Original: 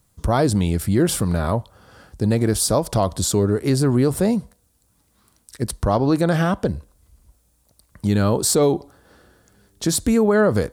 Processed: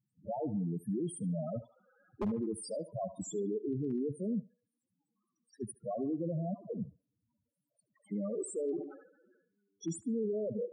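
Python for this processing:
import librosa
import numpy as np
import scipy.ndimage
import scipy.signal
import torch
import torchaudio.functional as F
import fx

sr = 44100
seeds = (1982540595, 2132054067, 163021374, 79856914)

y = scipy.signal.sosfilt(scipy.signal.bessel(6, 190.0, 'highpass', norm='mag', fs=sr, output='sos'), x)
y = fx.level_steps(y, sr, step_db=14)
y = fx.transient(y, sr, attack_db=8, sustain_db=-1, at=(1.37, 2.36))
y = fx.dispersion(y, sr, late='lows', ms=136.0, hz=430.0, at=(6.54, 8.12))
y = fx.spec_topn(y, sr, count=4)
y = 10.0 ** (-23.5 / 20.0) * (np.abs((y / 10.0 ** (-23.5 / 20.0) + 3.0) % 4.0 - 2.0) - 1.0)
y = fx.echo_banded(y, sr, ms=73, feedback_pct=47, hz=1400.0, wet_db=-10)
y = fx.sustainer(y, sr, db_per_s=87.0, at=(8.62, 9.93))
y = y * 10.0 ** (-4.0 / 20.0)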